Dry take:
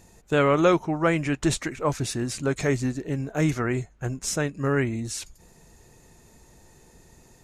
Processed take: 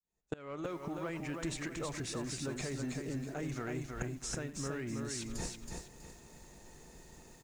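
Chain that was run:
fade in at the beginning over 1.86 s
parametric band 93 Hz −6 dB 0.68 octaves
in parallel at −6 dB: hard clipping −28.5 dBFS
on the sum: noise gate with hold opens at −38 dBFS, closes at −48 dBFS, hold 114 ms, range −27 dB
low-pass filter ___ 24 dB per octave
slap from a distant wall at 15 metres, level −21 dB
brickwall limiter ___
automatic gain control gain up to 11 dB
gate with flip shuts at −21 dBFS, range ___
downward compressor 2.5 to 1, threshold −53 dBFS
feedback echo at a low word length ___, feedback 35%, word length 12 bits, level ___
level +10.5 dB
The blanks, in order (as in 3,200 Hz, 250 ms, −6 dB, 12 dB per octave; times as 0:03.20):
9,400 Hz, −18 dBFS, −25 dB, 323 ms, −3.5 dB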